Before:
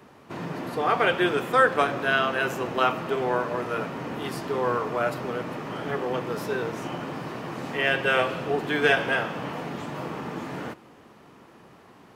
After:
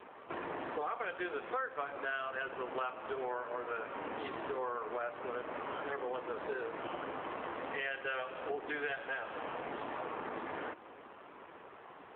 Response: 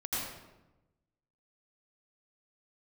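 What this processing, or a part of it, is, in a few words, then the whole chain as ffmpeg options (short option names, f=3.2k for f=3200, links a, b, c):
voicemail: -af "highpass=420,lowpass=3k,acompressor=threshold=-39dB:ratio=6,volume=3.5dB" -ar 8000 -c:a libopencore_amrnb -b:a 7400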